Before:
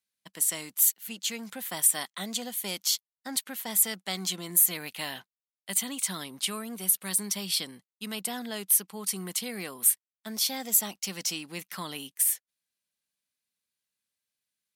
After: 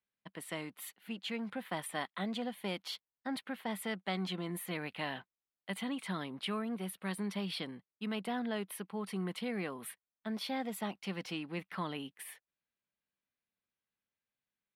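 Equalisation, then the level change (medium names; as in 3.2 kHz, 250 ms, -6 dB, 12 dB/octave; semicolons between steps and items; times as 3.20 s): distance through air 450 m; peaking EQ 10 kHz +7 dB 0.28 oct; +1.5 dB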